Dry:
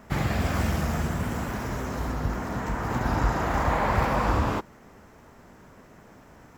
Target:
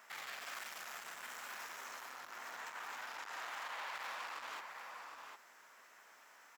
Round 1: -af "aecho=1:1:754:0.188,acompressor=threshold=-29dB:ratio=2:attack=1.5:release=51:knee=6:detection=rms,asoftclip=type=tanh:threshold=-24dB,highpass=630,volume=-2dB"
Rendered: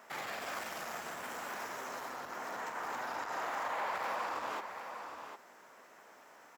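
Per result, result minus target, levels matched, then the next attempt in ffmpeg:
500 Hz band +7.5 dB; soft clipping: distortion −9 dB
-af "aecho=1:1:754:0.188,acompressor=threshold=-29dB:ratio=2:attack=1.5:release=51:knee=6:detection=rms,asoftclip=type=tanh:threshold=-24dB,highpass=1300,volume=-2dB"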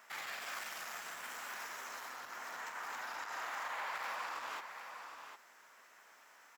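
soft clipping: distortion −9 dB
-af "aecho=1:1:754:0.188,acompressor=threshold=-29dB:ratio=2:attack=1.5:release=51:knee=6:detection=rms,asoftclip=type=tanh:threshold=-32.5dB,highpass=1300,volume=-2dB"

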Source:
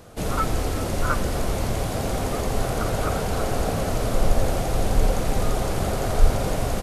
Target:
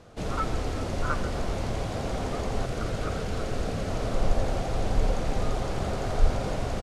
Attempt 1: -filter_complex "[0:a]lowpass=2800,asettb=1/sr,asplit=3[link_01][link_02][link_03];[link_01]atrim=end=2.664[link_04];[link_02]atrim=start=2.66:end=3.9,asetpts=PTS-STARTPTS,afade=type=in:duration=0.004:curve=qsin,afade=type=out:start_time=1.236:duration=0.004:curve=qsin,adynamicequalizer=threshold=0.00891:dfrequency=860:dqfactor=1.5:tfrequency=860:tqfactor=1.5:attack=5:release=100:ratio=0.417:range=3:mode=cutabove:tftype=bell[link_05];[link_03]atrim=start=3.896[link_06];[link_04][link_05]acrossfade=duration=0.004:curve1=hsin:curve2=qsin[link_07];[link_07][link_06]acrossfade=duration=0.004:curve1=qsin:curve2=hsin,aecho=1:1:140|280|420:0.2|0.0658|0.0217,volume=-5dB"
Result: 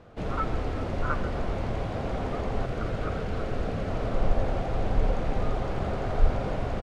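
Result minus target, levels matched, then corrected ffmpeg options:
8,000 Hz band −12.5 dB
-filter_complex "[0:a]lowpass=6200,asettb=1/sr,asplit=3[link_01][link_02][link_03];[link_01]atrim=end=2.664[link_04];[link_02]atrim=start=2.66:end=3.9,asetpts=PTS-STARTPTS,afade=type=in:duration=0.004:curve=qsin,afade=type=out:start_time=1.236:duration=0.004:curve=qsin,adynamicequalizer=threshold=0.00891:dfrequency=860:dqfactor=1.5:tfrequency=860:tqfactor=1.5:attack=5:release=100:ratio=0.417:range=3:mode=cutabove:tftype=bell[link_05];[link_03]atrim=start=3.896[link_06];[link_04][link_05]acrossfade=duration=0.004:curve1=hsin:curve2=qsin[link_07];[link_07][link_06]acrossfade=duration=0.004:curve1=qsin:curve2=hsin,aecho=1:1:140|280|420:0.2|0.0658|0.0217,volume=-5dB"

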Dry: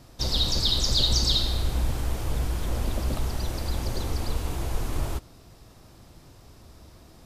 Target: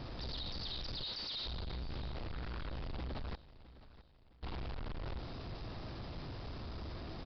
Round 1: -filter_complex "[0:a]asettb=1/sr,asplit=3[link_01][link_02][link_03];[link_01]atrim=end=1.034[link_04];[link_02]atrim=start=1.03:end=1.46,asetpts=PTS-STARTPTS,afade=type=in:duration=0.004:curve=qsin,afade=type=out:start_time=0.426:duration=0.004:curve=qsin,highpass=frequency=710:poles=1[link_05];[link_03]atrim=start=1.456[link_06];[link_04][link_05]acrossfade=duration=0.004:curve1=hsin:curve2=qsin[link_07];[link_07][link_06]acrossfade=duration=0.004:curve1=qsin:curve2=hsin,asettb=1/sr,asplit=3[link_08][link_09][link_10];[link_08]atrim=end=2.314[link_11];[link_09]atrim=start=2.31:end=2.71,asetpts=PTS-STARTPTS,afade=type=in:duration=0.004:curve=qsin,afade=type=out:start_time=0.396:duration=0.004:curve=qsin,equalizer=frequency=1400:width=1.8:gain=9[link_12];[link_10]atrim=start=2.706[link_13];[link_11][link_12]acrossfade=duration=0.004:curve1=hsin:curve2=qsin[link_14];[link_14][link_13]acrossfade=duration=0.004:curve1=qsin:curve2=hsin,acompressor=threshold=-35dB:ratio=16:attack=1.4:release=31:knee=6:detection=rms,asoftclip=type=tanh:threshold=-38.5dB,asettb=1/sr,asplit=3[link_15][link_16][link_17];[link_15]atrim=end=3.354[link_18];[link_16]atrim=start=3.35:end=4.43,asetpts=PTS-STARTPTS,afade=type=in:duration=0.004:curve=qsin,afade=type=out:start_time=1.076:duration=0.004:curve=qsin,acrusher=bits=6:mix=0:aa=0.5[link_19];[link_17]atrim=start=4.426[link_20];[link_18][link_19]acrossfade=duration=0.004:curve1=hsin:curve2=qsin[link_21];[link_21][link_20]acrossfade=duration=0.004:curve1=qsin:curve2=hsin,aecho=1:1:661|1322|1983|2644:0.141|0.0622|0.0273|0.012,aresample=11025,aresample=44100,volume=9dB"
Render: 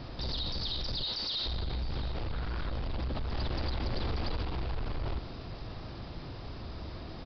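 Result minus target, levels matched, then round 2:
soft clipping: distortion −8 dB
-filter_complex "[0:a]asettb=1/sr,asplit=3[link_01][link_02][link_03];[link_01]atrim=end=1.034[link_04];[link_02]atrim=start=1.03:end=1.46,asetpts=PTS-STARTPTS,afade=type=in:duration=0.004:curve=qsin,afade=type=out:start_time=0.426:duration=0.004:curve=qsin,highpass=frequency=710:poles=1[link_05];[link_03]atrim=start=1.456[link_06];[link_04][link_05]acrossfade=duration=0.004:curve1=hsin:curve2=qsin[link_07];[link_07][link_06]acrossfade=duration=0.004:curve1=qsin:curve2=hsin,asettb=1/sr,asplit=3[link_08][link_09][link_10];[link_08]atrim=end=2.314[link_11];[link_09]atrim=start=2.31:end=2.71,asetpts=PTS-STARTPTS,afade=type=in:duration=0.004:curve=qsin,afade=type=out:start_time=0.396:duration=0.004:curve=qsin,equalizer=frequency=1400:width=1.8:gain=9[link_12];[link_10]atrim=start=2.706[link_13];[link_11][link_12]acrossfade=duration=0.004:curve1=hsin:curve2=qsin[link_14];[link_14][link_13]acrossfade=duration=0.004:curve1=qsin:curve2=hsin,acompressor=threshold=-35dB:ratio=16:attack=1.4:release=31:knee=6:detection=rms,asoftclip=type=tanh:threshold=-48.5dB,asettb=1/sr,asplit=3[link_15][link_16][link_17];[link_15]atrim=end=3.354[link_18];[link_16]atrim=start=3.35:end=4.43,asetpts=PTS-STARTPTS,afade=type=in:duration=0.004:curve=qsin,afade=type=out:start_time=1.076:duration=0.004:curve=qsin,acrusher=bits=6:mix=0:aa=0.5[link_19];[link_17]atrim=start=4.426[link_20];[link_18][link_19]acrossfade=duration=0.004:curve1=hsin:curve2=qsin[link_21];[link_21][link_20]acrossfade=duration=0.004:curve1=qsin:curve2=hsin,aecho=1:1:661|1322|1983|2644:0.141|0.0622|0.0273|0.012,aresample=11025,aresample=44100,volume=9dB"

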